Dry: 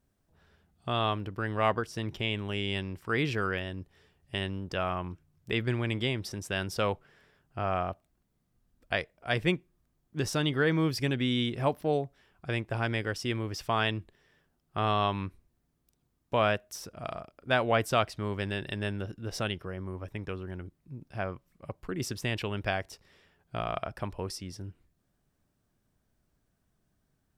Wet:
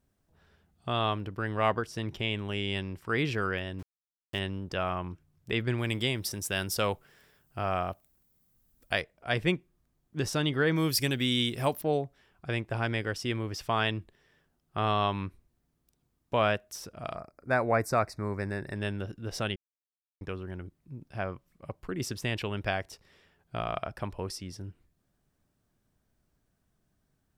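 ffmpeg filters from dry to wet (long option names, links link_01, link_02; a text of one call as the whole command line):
ffmpeg -i in.wav -filter_complex "[0:a]asettb=1/sr,asplit=3[link_01][link_02][link_03];[link_01]atrim=end=3.794[link_04];[link_02]atrim=start=3.79:end=4.39,asetpts=PTS-STARTPTS,afade=type=in:duration=0.004:curve=qsin,afade=type=out:start_time=0.596:duration=0.004:curve=qsin,aeval=exprs='val(0)*gte(abs(val(0)),0.00668)':channel_layout=same[link_05];[link_03]atrim=start=4.386[link_06];[link_04][link_05]acrossfade=duration=0.004:curve1=hsin:curve2=qsin[link_07];[link_07][link_06]acrossfade=duration=0.004:curve1=qsin:curve2=hsin,asettb=1/sr,asplit=3[link_08][link_09][link_10];[link_08]atrim=end=5.784[link_11];[link_09]atrim=start=5.78:end=9.01,asetpts=PTS-STARTPTS,afade=type=in:duration=0.004:curve=qsin,afade=type=out:start_time=3.226:duration=0.004:curve=qsin,aemphasis=mode=production:type=50fm[link_12];[link_10]atrim=start=9.006[link_13];[link_11][link_12]acrossfade=duration=0.004:curve1=hsin:curve2=qsin[link_14];[link_14][link_13]acrossfade=duration=0.004:curve1=qsin:curve2=hsin,asettb=1/sr,asplit=3[link_15][link_16][link_17];[link_15]atrim=end=10.764[link_18];[link_16]atrim=start=10.76:end=11.82,asetpts=PTS-STARTPTS,afade=type=in:duration=0.004:curve=qsin,afade=type=out:start_time=1.056:duration=0.004:curve=qsin,aemphasis=mode=production:type=75fm[link_19];[link_17]atrim=start=11.816[link_20];[link_18][link_19]acrossfade=duration=0.004:curve1=hsin:curve2=qsin[link_21];[link_21][link_20]acrossfade=duration=0.004:curve1=qsin:curve2=hsin,asettb=1/sr,asplit=3[link_22][link_23][link_24];[link_22]atrim=end=17.164[link_25];[link_23]atrim=start=17.16:end=18.76,asetpts=PTS-STARTPTS,afade=type=in:duration=0.004:curve=qsin,afade=type=out:start_time=1.596:duration=0.004:curve=qsin,asuperstop=centerf=3100:order=4:qfactor=1.5[link_26];[link_24]atrim=start=18.756[link_27];[link_25][link_26]acrossfade=duration=0.004:curve1=hsin:curve2=qsin[link_28];[link_28][link_27]acrossfade=duration=0.004:curve1=qsin:curve2=hsin,asplit=3[link_29][link_30][link_31];[link_29]atrim=end=19.56,asetpts=PTS-STARTPTS,afade=type=out:start_time=19.556:duration=0.004:curve=hsin[link_32];[link_30]atrim=start=19.56:end=20.21,asetpts=PTS-STARTPTS,volume=0[link_33];[link_31]atrim=start=20.21,asetpts=PTS-STARTPTS,afade=type=in:duration=0.004:curve=hsin[link_34];[link_32][link_33][link_34]concat=n=3:v=0:a=1" out.wav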